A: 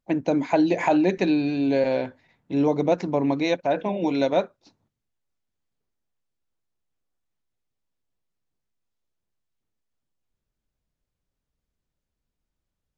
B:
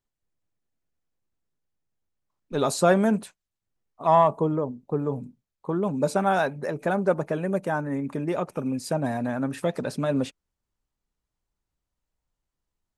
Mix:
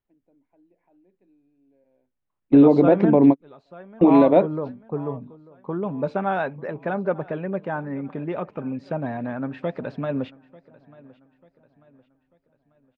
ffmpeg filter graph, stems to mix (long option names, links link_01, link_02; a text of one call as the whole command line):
ffmpeg -i stem1.wav -i stem2.wav -filter_complex "[0:a]equalizer=frequency=290:width=0.4:gain=12,volume=2dB[link_01];[1:a]volume=-1.5dB,asplit=3[link_02][link_03][link_04];[link_03]volume=-22dB[link_05];[link_04]apad=whole_len=572069[link_06];[link_01][link_06]sidechaingate=range=-54dB:threshold=-42dB:ratio=16:detection=peak[link_07];[link_05]aecho=0:1:892|1784|2676|3568|4460|5352:1|0.41|0.168|0.0689|0.0283|0.0116[link_08];[link_07][link_02][link_08]amix=inputs=3:normalize=0,lowpass=frequency=3200:width=0.5412,lowpass=frequency=3200:width=1.3066,alimiter=limit=-6dB:level=0:latency=1:release=163" out.wav